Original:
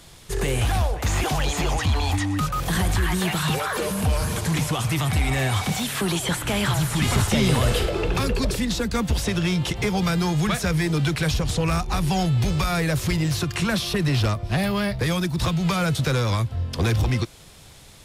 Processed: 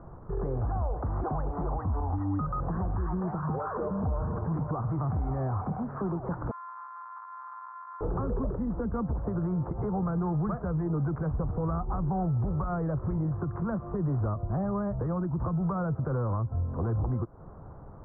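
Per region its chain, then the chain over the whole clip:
0:06.51–0:08.01: samples sorted by size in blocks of 128 samples + Butterworth high-pass 930 Hz 72 dB per octave
whole clip: downward compressor 4 to 1, threshold −31 dBFS; brickwall limiter −25.5 dBFS; Butterworth low-pass 1,300 Hz 48 dB per octave; level +3.5 dB

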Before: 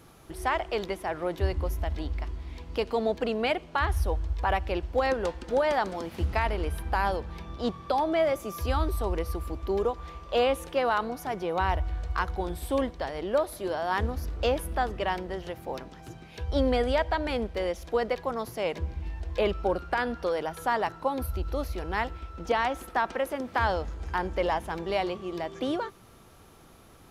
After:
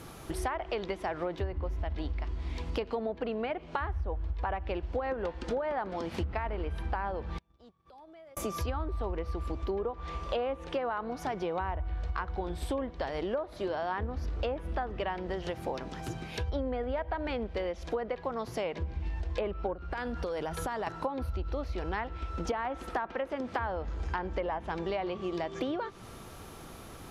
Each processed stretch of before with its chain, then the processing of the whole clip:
0:07.38–0:08.37: downward compressor 4 to 1, threshold −27 dBFS + gate with flip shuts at −35 dBFS, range −29 dB + transient designer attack −4 dB, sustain −10 dB
0:19.73–0:20.87: downward expander −41 dBFS + low-shelf EQ 120 Hz +9.5 dB + downward compressor, threshold −34 dBFS
whole clip: treble cut that deepens with the level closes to 1,900 Hz, closed at −22.5 dBFS; downward compressor 6 to 1, threshold −38 dBFS; level +7 dB

